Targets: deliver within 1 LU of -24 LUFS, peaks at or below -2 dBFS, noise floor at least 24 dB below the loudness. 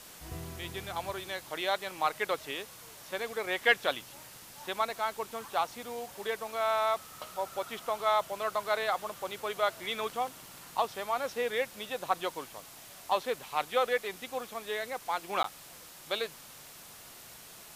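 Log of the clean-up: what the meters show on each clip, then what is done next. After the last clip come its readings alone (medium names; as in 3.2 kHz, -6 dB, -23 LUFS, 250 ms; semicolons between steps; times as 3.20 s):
dropouts 1; longest dropout 13 ms; noise floor -51 dBFS; noise floor target -58 dBFS; loudness -33.5 LUFS; peak level -10.0 dBFS; loudness target -24.0 LUFS
-> interpolate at 15.43 s, 13 ms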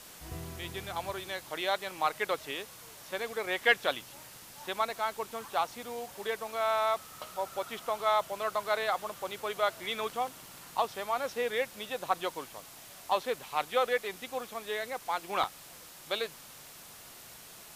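dropouts 0; noise floor -51 dBFS; noise floor target -57 dBFS
-> noise reduction 6 dB, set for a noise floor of -51 dBFS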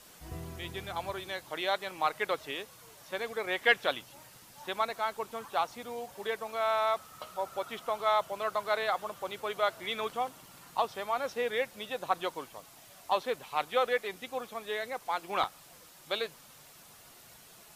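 noise floor -55 dBFS; noise floor target -58 dBFS
-> noise reduction 6 dB, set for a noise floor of -55 dBFS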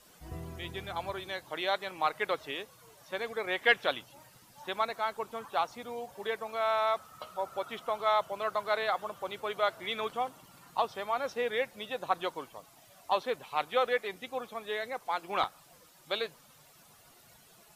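noise floor -59 dBFS; loudness -33.5 LUFS; peak level -10.0 dBFS; loudness target -24.0 LUFS
-> trim +9.5 dB; peak limiter -2 dBFS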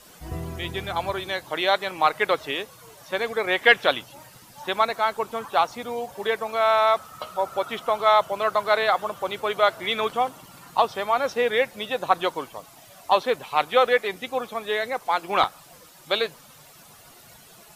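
loudness -24.0 LUFS; peak level -2.0 dBFS; noise floor -50 dBFS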